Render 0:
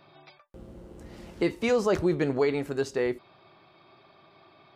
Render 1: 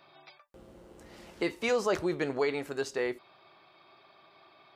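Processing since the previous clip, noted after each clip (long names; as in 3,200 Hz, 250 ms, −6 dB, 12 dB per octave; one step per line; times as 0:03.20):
low-shelf EQ 330 Hz −12 dB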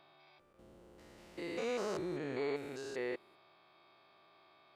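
spectrum averaged block by block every 200 ms
level −5 dB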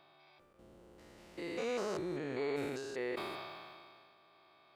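level that may fall only so fast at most 27 dB per second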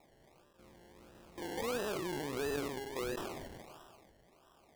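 sample-and-hold swept by an LFO 28×, swing 60% 1.5 Hz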